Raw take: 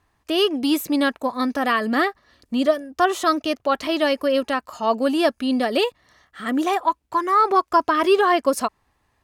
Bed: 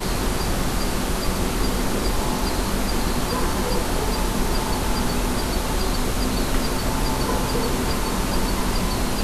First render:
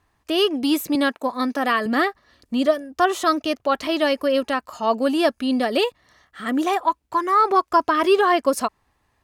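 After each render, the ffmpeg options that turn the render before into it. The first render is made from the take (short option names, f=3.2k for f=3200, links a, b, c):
-filter_complex "[0:a]asettb=1/sr,asplit=3[a][b][c];[a]atrim=end=0.954[d];[b]atrim=start=0.95:end=1.86,asetpts=PTS-STARTPTS,afade=t=in:d=0.004:c=qsin,afade=t=out:st=0.906:d=0.004:c=qsin,highpass=170[e];[c]atrim=start=1.856[f];[d][e]acrossfade=d=0.004:c1=hsin:c2=qsin[g];[g][f]acrossfade=d=0.004:c1=qsin:c2=hsin"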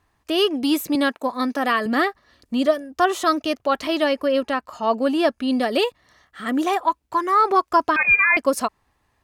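-filter_complex "[0:a]asettb=1/sr,asplit=3[a][b][c];[a]atrim=end=4.044[d];[b]atrim=start=4.04:end=5.48,asetpts=PTS-STARTPTS,afade=t=in:d=0.004:c=qsin,afade=t=out:st=1.436:d=0.004:c=qsin,highshelf=f=5.2k:g=-7[e];[c]atrim=start=5.476[f];[d][e]acrossfade=d=0.004:c1=hsin:c2=qsin[g];[g][f]acrossfade=d=0.004:c1=qsin:c2=hsin,asettb=1/sr,asplit=3[h][i][j];[h]atrim=end=7.964[k];[i]atrim=start=7.96:end=8.37,asetpts=PTS-STARTPTS,afade=t=in:d=0.004:c=qsin,afade=t=out:st=0.406:d=0.004:c=qsin,lowpass=f=2.4k:t=q:w=0.5098,lowpass=f=2.4k:t=q:w=0.6013,lowpass=f=2.4k:t=q:w=0.9,lowpass=f=2.4k:t=q:w=2.563,afreqshift=-2800[l];[j]atrim=start=8.366[m];[k][l]acrossfade=d=0.004:c1=hsin:c2=qsin[n];[n][m]acrossfade=d=0.004:c1=qsin:c2=hsin"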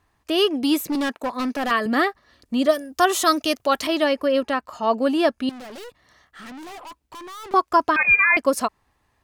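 -filter_complex "[0:a]asettb=1/sr,asplit=3[a][b][c];[a]atrim=end=0.864[d];[b]atrim=start=0.86:end=1.71,asetpts=PTS-STARTPTS,afade=t=in:d=0.004:c=qsin,afade=t=out:st=0.846:d=0.004:c=qsin,asoftclip=type=hard:threshold=-20.5dB[e];[c]atrim=start=1.706[f];[d][e]acrossfade=d=0.004:c1=hsin:c2=qsin[g];[g][f]acrossfade=d=0.004:c1=qsin:c2=hsin,asettb=1/sr,asplit=3[h][i][j];[h]atrim=end=2.694[k];[i]atrim=start=2.69:end=3.87,asetpts=PTS-STARTPTS,afade=t=in:d=0.004:c=qsin,afade=t=out:st=1.176:d=0.004:c=qsin,highshelf=f=4.3k:g=11.5[l];[j]atrim=start=3.866[m];[k][l]acrossfade=d=0.004:c1=hsin:c2=qsin[n];[n][m]acrossfade=d=0.004:c1=qsin:c2=hsin,asettb=1/sr,asplit=3[o][p][q];[o]atrim=end=5.494[r];[p]atrim=start=5.49:end=7.54,asetpts=PTS-STARTPTS,afade=t=in:d=0.004:c=qsin,afade=t=out:st=2.046:d=0.004:c=qsin,aeval=exprs='(tanh(70.8*val(0)+0.15)-tanh(0.15))/70.8':c=same[s];[q]atrim=start=7.536[t];[r][s]acrossfade=d=0.004:c1=hsin:c2=qsin[u];[u][t]acrossfade=d=0.004:c1=qsin:c2=hsin"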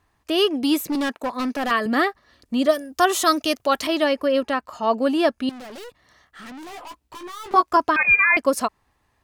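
-filter_complex "[0:a]asettb=1/sr,asplit=3[a][b][c];[a]atrim=end=6.714[d];[b]atrim=start=6.71:end=7.77,asetpts=PTS-STARTPTS,afade=t=in:d=0.004:c=qsin,afade=t=out:st=1.056:d=0.004:c=qsin,asplit=2[e][f];[f]adelay=17,volume=-5dB[g];[e][g]amix=inputs=2:normalize=0,atrim=end_sample=46746[h];[c]atrim=start=7.766[i];[d][h]acrossfade=d=0.004:c1=hsin:c2=qsin[j];[j][i]acrossfade=d=0.004:c1=qsin:c2=hsin"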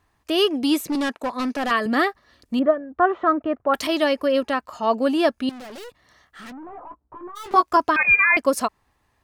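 -filter_complex "[0:a]asettb=1/sr,asplit=3[a][b][c];[a]atrim=end=0.524[d];[b]atrim=start=0.52:end=2,asetpts=PTS-STARTPTS,afade=t=in:d=0.004:c=qsin,afade=t=out:st=1.476:d=0.004:c=qsin,lowpass=12k[e];[c]atrim=start=1.996[f];[d][e]acrossfade=d=0.004:c1=hsin:c2=qsin[g];[g][f]acrossfade=d=0.004:c1=qsin:c2=hsin,asettb=1/sr,asplit=3[h][i][j];[h]atrim=end=2.594[k];[i]atrim=start=2.59:end=3.74,asetpts=PTS-STARTPTS,afade=t=in:d=0.004:c=qsin,afade=t=out:st=1.146:d=0.004:c=qsin,lowpass=f=1.6k:w=0.5412,lowpass=f=1.6k:w=1.3066[l];[j]atrim=start=3.736[m];[k][l]acrossfade=d=0.004:c1=hsin:c2=qsin[n];[n][m]acrossfade=d=0.004:c1=qsin:c2=hsin,asplit=3[o][p][q];[o]afade=t=out:st=6.51:d=0.02[r];[p]lowpass=f=1.3k:w=0.5412,lowpass=f=1.3k:w=1.3066,afade=t=in:st=6.51:d=0.02,afade=t=out:st=7.35:d=0.02[s];[q]afade=t=in:st=7.35:d=0.02[t];[r][s][t]amix=inputs=3:normalize=0"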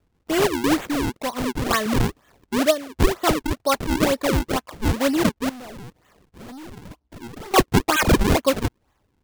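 -af "acrusher=samples=42:mix=1:aa=0.000001:lfo=1:lforange=67.2:lforate=2.1"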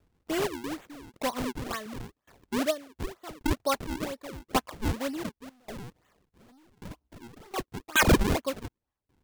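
-af "aeval=exprs='val(0)*pow(10,-26*if(lt(mod(0.88*n/s,1),2*abs(0.88)/1000),1-mod(0.88*n/s,1)/(2*abs(0.88)/1000),(mod(0.88*n/s,1)-2*abs(0.88)/1000)/(1-2*abs(0.88)/1000))/20)':c=same"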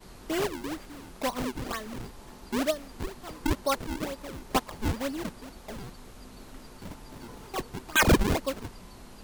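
-filter_complex "[1:a]volume=-25dB[a];[0:a][a]amix=inputs=2:normalize=0"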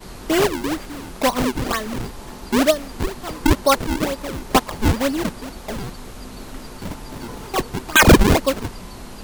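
-af "volume=11.5dB,alimiter=limit=-3dB:level=0:latency=1"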